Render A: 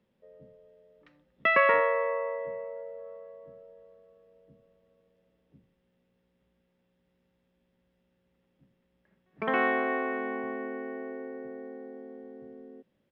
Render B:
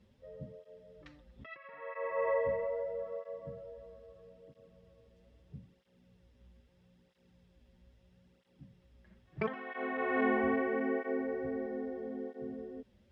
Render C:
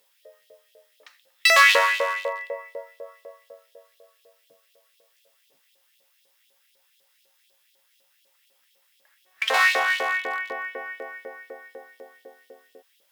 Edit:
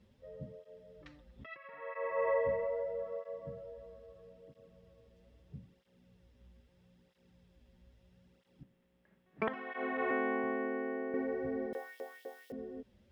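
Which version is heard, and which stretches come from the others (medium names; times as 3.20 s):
B
8.63–9.48 s: from A
10.11–11.14 s: from A
11.73–12.52 s: from C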